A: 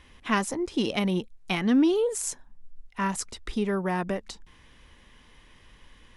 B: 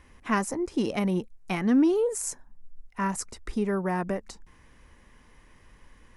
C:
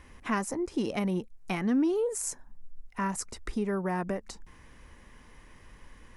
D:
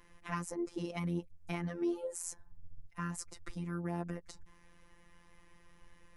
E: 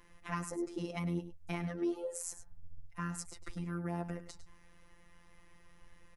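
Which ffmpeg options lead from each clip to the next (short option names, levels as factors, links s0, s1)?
-af "equalizer=f=3400:t=o:w=0.79:g=-11"
-af "acompressor=threshold=0.0112:ratio=1.5,volume=1.33"
-af "afftfilt=real='hypot(re,im)*cos(PI*b)':imag='0':win_size=1024:overlap=0.75,tremolo=f=87:d=0.261,volume=0.668"
-af "aecho=1:1:103:0.224"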